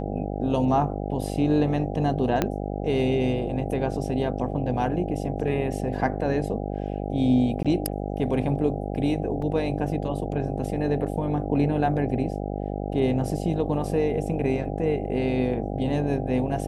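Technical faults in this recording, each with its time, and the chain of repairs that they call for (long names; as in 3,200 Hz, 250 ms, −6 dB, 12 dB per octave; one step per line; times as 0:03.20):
mains buzz 50 Hz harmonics 16 −30 dBFS
0:02.42: click −8 dBFS
0:07.63–0:07.65: drop-out 16 ms
0:09.42: drop-out 3.6 ms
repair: click removal
hum removal 50 Hz, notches 16
repair the gap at 0:07.63, 16 ms
repair the gap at 0:09.42, 3.6 ms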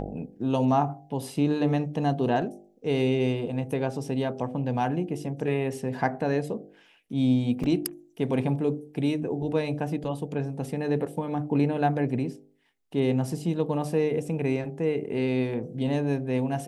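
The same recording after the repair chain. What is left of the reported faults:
0:02.42: click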